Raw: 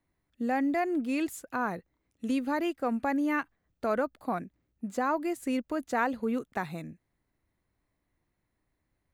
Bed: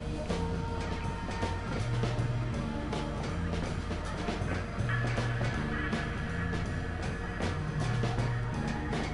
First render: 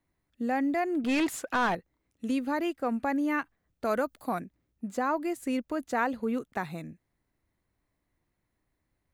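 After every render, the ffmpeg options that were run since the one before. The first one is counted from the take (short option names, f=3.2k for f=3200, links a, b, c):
-filter_complex "[0:a]asettb=1/sr,asplit=3[a][b][c];[a]atrim=end=1.044[d];[b]atrim=start=1.04:end=1.75,asetpts=PTS-STARTPTS,afade=t=in:d=0.004:c=qsin,afade=t=out:st=0.706:d=0.004:c=qsin,asplit=2[e][f];[f]highpass=f=720:p=1,volume=22dB,asoftclip=type=tanh:threshold=-18.5dB[g];[e][g]amix=inputs=2:normalize=0,lowpass=f=2.7k:p=1,volume=-6dB[h];[c]atrim=start=1.746[i];[d][h]acrossfade=d=0.004:c1=hsin:c2=qsin[j];[j][i]acrossfade=d=0.004:c1=qsin:c2=hsin,asettb=1/sr,asplit=3[k][l][m];[k]atrim=end=3.854[n];[l]atrim=start=3.85:end=4.4,asetpts=PTS-STARTPTS,afade=t=in:d=0.004:c=qsin,afade=t=out:st=0.546:d=0.004:c=qsin,highshelf=f=4.6k:g=11[o];[m]atrim=start=4.396[p];[n][o]acrossfade=d=0.004:c1=hsin:c2=qsin[q];[q][p]acrossfade=d=0.004:c1=qsin:c2=hsin"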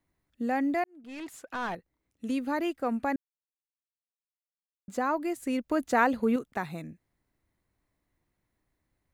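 -filter_complex "[0:a]asplit=6[a][b][c][d][e][f];[a]atrim=end=0.84,asetpts=PTS-STARTPTS,afade=t=out:st=0.836:d=0.004:c=hsin[g];[b]atrim=start=0.84:end=3.16,asetpts=PTS-STARTPTS,afade=t=in:d=1.75,afade=t=out:st=2.316:d=0.004:c=hsin[h];[c]atrim=start=3.16:end=4.88,asetpts=PTS-STARTPTS,volume=0[i];[d]atrim=start=4.88:end=5.712,asetpts=PTS-STARTPTS,afade=t=in:d=0.004:c=hsin[j];[e]atrim=start=5.708:end=6.362,asetpts=PTS-STARTPTS,volume=4.5dB[k];[f]atrim=start=6.358[l];[g][h][i][j]concat=n=4:v=0:a=1[m];[m][k]acrossfade=d=0.004:c1=hsin:c2=hsin[n];[n][l]acrossfade=d=0.004:c1=hsin:c2=hsin"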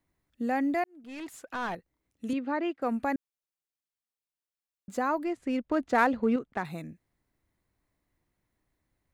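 -filter_complex "[0:a]asettb=1/sr,asplit=3[a][b][c];[a]atrim=end=2.334[d];[b]atrim=start=2.33:end=2.82,asetpts=PTS-STARTPTS,afade=t=in:d=0.004:c=qsin,afade=t=out:st=0.486:d=0.004:c=qsin,highpass=200,lowpass=3k[e];[c]atrim=start=2.816[f];[d][e]acrossfade=d=0.004:c1=hsin:c2=qsin[g];[g][f]acrossfade=d=0.004:c1=qsin:c2=hsin,asettb=1/sr,asplit=3[h][i][j];[h]atrim=end=5.244[k];[i]atrim=start=5.24:end=6.65,asetpts=PTS-STARTPTS,afade=t=in:d=0.004:c=qsin,afade=t=out:st=1.406:d=0.004:c=qsin,adynamicsmooth=sensitivity=7:basefreq=3k[l];[j]atrim=start=6.646[m];[k][l]acrossfade=d=0.004:c1=hsin:c2=qsin[n];[n][m]acrossfade=d=0.004:c1=qsin:c2=hsin"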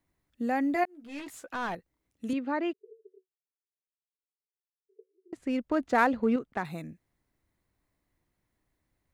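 -filter_complex "[0:a]asettb=1/sr,asplit=3[a][b][c];[a]atrim=end=0.744[d];[b]atrim=start=0.74:end=1.48,asetpts=PTS-STARTPTS,afade=t=in:d=0.004:c=qsin,afade=t=out:st=0.736:d=0.004:c=qsin,asplit=2[e][f];[f]adelay=14,volume=-5dB[g];[e][g]amix=inputs=2:normalize=0,atrim=end_sample=32634[h];[c]atrim=start=1.476[i];[d][h]acrossfade=d=0.004:c1=hsin:c2=qsin[j];[j][i]acrossfade=d=0.004:c1=qsin:c2=hsin,asettb=1/sr,asplit=3[k][l][m];[k]atrim=end=2.734[n];[l]atrim=start=2.73:end=5.33,asetpts=PTS-STARTPTS,afade=t=in:d=0.004:c=qsin,afade=t=out:st=2.596:d=0.004:c=qsin,asuperpass=centerf=410:order=12:qfactor=5.3[o];[m]atrim=start=5.326[p];[n][o]acrossfade=d=0.004:c1=hsin:c2=qsin[q];[q][p]acrossfade=d=0.004:c1=qsin:c2=hsin"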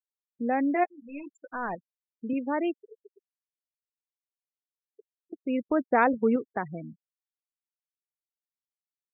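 -af "afftfilt=real='re*gte(hypot(re,im),0.0224)':imag='im*gte(hypot(re,im),0.0224)':win_size=1024:overlap=0.75,adynamicequalizer=threshold=0.0158:dfrequency=480:dqfactor=0.93:tfrequency=480:tqfactor=0.93:attack=5:release=100:ratio=0.375:range=2:mode=boostabove:tftype=bell"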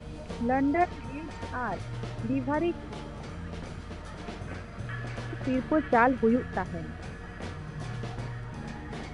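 -filter_complex "[1:a]volume=-5.5dB[a];[0:a][a]amix=inputs=2:normalize=0"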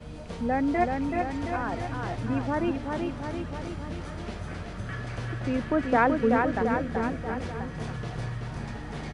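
-af "aecho=1:1:380|722|1030|1307|1556:0.631|0.398|0.251|0.158|0.1"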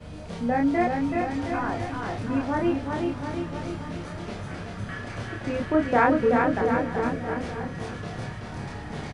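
-filter_complex "[0:a]asplit=2[a][b];[b]adelay=29,volume=-2dB[c];[a][c]amix=inputs=2:normalize=0,aecho=1:1:879:0.106"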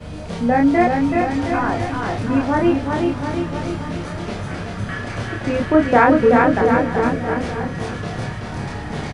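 -af "volume=8dB,alimiter=limit=-1dB:level=0:latency=1"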